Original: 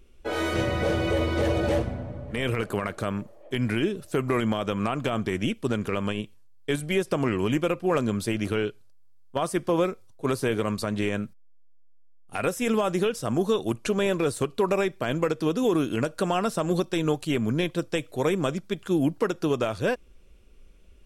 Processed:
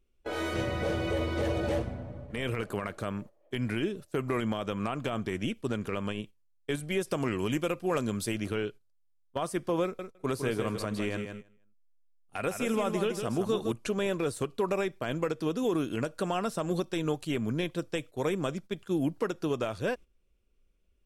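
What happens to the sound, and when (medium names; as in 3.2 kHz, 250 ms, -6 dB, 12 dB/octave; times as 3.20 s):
7.01–8.40 s: treble shelf 4.1 kHz +7 dB
9.83–13.72 s: feedback delay 159 ms, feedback 28%, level -7 dB
whole clip: gate -37 dBFS, range -12 dB; trim -5.5 dB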